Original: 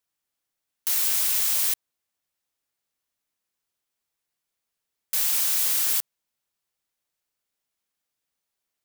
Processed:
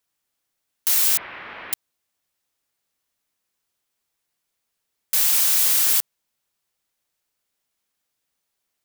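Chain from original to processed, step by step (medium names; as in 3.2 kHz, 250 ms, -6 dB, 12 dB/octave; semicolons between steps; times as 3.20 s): 1.17–1.73 s: inverse Chebyshev low-pass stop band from 6.8 kHz, stop band 60 dB; trim +5 dB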